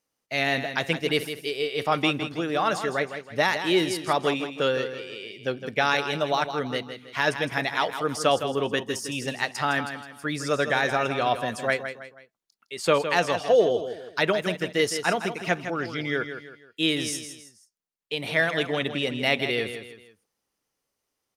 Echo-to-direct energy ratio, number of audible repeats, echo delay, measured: -9.0 dB, 3, 0.161 s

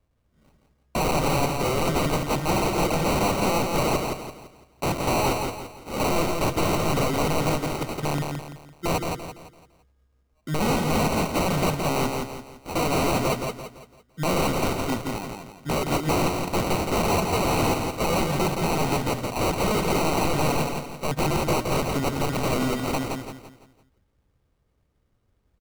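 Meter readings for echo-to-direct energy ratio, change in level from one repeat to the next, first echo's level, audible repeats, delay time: -4.0 dB, -8.0 dB, -4.5 dB, 4, 0.169 s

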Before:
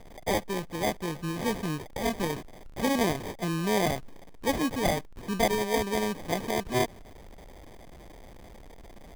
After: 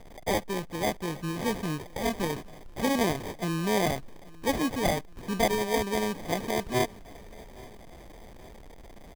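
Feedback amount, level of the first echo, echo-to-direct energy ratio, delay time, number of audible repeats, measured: 50%, -23.0 dB, -22.0 dB, 0.826 s, 2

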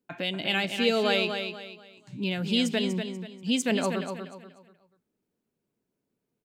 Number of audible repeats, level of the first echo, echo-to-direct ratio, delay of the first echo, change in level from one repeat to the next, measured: 3, -7.0 dB, -6.5 dB, 0.242 s, -10.0 dB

